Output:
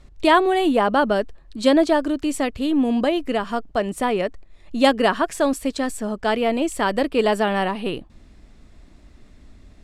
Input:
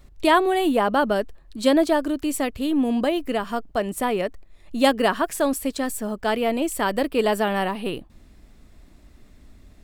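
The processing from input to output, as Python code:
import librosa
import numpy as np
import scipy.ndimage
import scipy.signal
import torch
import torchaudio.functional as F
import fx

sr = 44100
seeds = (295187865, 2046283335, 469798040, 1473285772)

y = scipy.signal.sosfilt(scipy.signal.butter(2, 8000.0, 'lowpass', fs=sr, output='sos'), x)
y = y * librosa.db_to_amplitude(2.0)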